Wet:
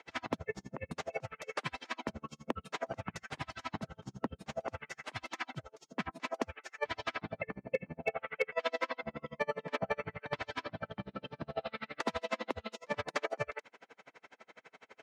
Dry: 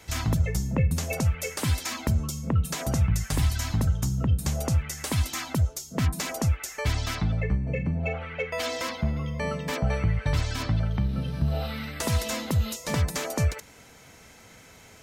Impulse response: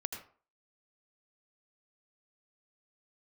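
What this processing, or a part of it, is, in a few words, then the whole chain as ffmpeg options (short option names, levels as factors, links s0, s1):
helicopter radio: -af "highpass=390,lowpass=2500,aeval=exprs='val(0)*pow(10,-38*(0.5-0.5*cos(2*PI*12*n/s))/20)':c=same,asoftclip=type=hard:threshold=0.0562,volume=1.58"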